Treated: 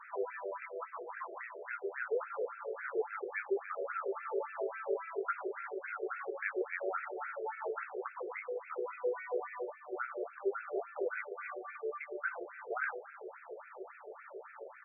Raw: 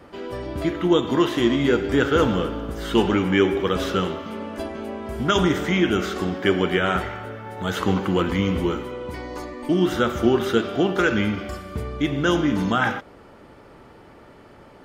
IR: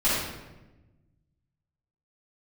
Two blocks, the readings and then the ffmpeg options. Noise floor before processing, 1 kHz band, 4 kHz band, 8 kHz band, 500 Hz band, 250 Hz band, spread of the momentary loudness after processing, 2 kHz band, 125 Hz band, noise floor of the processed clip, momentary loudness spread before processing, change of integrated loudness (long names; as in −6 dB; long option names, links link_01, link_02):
−47 dBFS, −13.5 dB, below −40 dB, below −40 dB, −14.0 dB, −27.5 dB, 11 LU, −13.0 dB, below −40 dB, −54 dBFS, 13 LU, −17.0 dB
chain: -filter_complex "[0:a]asplit=2[link_01][link_02];[link_02]adelay=16,volume=-8dB[link_03];[link_01][link_03]amix=inputs=2:normalize=0,acompressor=threshold=-32dB:ratio=6,asubboost=boost=7.5:cutoff=250,asplit=2[link_04][link_05];[1:a]atrim=start_sample=2205,adelay=123[link_06];[link_05][link_06]afir=irnorm=-1:irlink=0,volume=-29dB[link_07];[link_04][link_07]amix=inputs=2:normalize=0,afftfilt=real='re*between(b*sr/1024,490*pow(1900/490,0.5+0.5*sin(2*PI*3.6*pts/sr))/1.41,490*pow(1900/490,0.5+0.5*sin(2*PI*3.6*pts/sr))*1.41)':imag='im*between(b*sr/1024,490*pow(1900/490,0.5+0.5*sin(2*PI*3.6*pts/sr))/1.41,490*pow(1900/490,0.5+0.5*sin(2*PI*3.6*pts/sr))*1.41)':win_size=1024:overlap=0.75,volume=4.5dB"